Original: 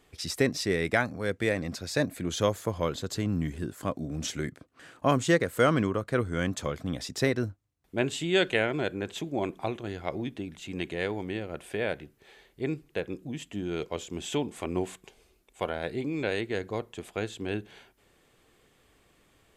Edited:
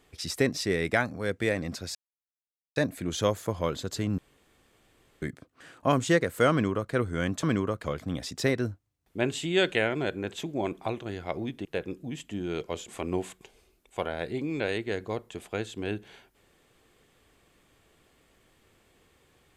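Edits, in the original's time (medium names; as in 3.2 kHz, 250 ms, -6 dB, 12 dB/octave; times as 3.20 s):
1.95 s: insert silence 0.81 s
3.37–4.41 s: room tone
5.70–6.11 s: copy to 6.62 s
10.43–12.87 s: delete
14.10–14.51 s: delete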